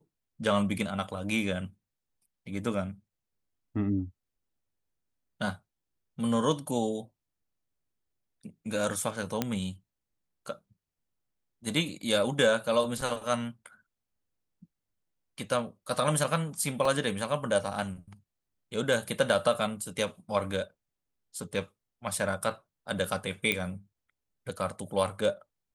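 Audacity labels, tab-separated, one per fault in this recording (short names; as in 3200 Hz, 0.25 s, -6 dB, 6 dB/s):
9.420000	9.420000	pop -12 dBFS
16.850000	16.850000	gap 3.1 ms
23.520000	23.520000	pop -12 dBFS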